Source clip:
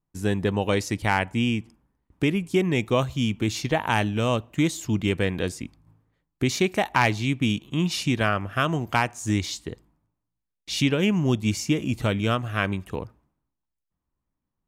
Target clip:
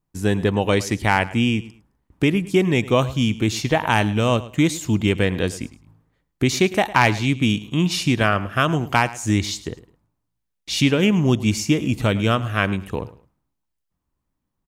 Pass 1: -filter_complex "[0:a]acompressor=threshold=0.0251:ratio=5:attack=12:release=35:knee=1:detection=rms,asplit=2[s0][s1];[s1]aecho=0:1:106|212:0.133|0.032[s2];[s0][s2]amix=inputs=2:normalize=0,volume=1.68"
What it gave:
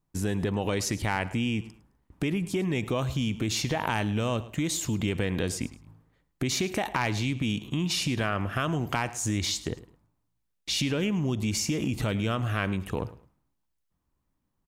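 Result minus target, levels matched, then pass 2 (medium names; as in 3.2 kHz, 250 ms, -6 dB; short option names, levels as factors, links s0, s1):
compression: peak gain reduction +13.5 dB
-filter_complex "[0:a]asplit=2[s0][s1];[s1]aecho=0:1:106|212:0.133|0.032[s2];[s0][s2]amix=inputs=2:normalize=0,volume=1.68"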